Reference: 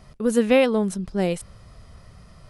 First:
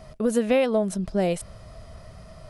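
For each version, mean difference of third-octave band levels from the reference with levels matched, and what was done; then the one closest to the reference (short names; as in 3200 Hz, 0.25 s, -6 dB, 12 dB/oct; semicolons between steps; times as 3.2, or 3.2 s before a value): 3.0 dB: bell 640 Hz +13 dB 0.23 oct; compressor 2.5:1, threshold -23 dBFS, peak gain reduction 8 dB; gain +2 dB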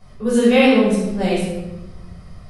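6.0 dB: dynamic EQ 4100 Hz, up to +6 dB, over -40 dBFS, Q 0.72; shoebox room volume 460 m³, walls mixed, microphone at 5.4 m; gain -8.5 dB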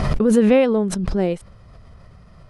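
4.5 dB: LPF 2400 Hz 6 dB/oct; dynamic EQ 350 Hz, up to +4 dB, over -28 dBFS, Q 1.1; backwards sustainer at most 22 dB/s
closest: first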